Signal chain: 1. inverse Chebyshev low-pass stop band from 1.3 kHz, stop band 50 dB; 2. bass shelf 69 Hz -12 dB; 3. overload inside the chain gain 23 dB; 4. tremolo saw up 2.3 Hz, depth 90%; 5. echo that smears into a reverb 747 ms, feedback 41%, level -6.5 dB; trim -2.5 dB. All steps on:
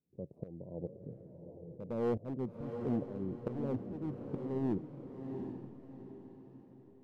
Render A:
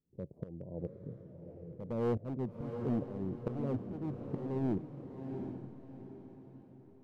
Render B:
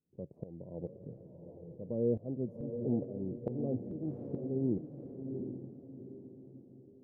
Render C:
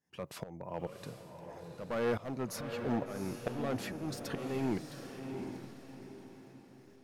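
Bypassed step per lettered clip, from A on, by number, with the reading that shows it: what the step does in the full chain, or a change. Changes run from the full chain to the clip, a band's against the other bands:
2, 125 Hz band +2.0 dB; 3, distortion -13 dB; 1, 2 kHz band +14.5 dB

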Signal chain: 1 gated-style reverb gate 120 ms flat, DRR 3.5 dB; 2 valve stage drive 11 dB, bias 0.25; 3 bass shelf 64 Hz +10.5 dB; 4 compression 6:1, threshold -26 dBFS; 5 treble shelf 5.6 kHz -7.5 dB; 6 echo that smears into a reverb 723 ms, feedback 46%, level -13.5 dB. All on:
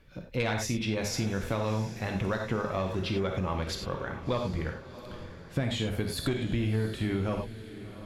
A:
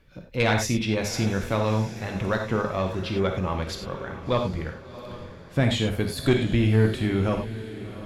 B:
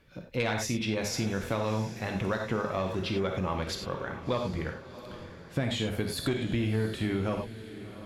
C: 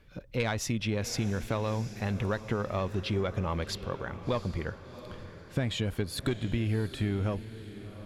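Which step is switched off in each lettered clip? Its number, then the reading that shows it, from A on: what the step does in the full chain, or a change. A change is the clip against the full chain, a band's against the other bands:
4, mean gain reduction 4.0 dB; 3, 125 Hz band -2.0 dB; 1, momentary loudness spread change +2 LU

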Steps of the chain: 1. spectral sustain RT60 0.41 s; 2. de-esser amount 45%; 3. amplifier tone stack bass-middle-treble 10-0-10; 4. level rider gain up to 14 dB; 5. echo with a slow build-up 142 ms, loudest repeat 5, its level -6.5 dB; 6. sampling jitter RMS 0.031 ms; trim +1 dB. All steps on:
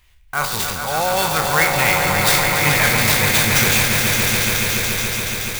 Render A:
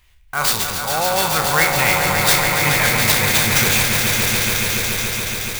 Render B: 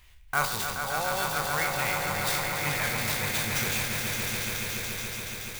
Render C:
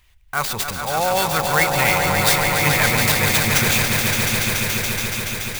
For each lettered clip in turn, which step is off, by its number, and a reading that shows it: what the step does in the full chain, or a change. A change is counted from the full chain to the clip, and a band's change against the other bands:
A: 2, momentary loudness spread change -1 LU; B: 4, 1 kHz band +2.0 dB; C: 1, 8 kHz band -1.5 dB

